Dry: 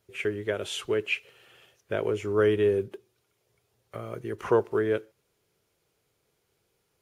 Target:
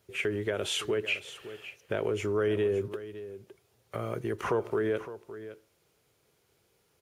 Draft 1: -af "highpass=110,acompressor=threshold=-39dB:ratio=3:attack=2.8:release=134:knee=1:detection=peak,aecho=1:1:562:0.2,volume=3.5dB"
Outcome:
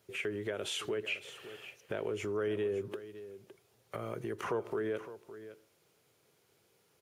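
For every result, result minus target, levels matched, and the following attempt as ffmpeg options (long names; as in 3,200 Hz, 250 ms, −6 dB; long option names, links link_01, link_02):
downward compressor: peak gain reduction +5.5 dB; 125 Hz band −2.0 dB
-af "highpass=110,acompressor=threshold=-30dB:ratio=3:attack=2.8:release=134:knee=1:detection=peak,aecho=1:1:562:0.2,volume=3.5dB"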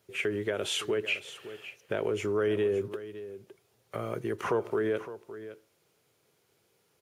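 125 Hz band −3.0 dB
-af "highpass=40,acompressor=threshold=-30dB:ratio=3:attack=2.8:release=134:knee=1:detection=peak,aecho=1:1:562:0.2,volume=3.5dB"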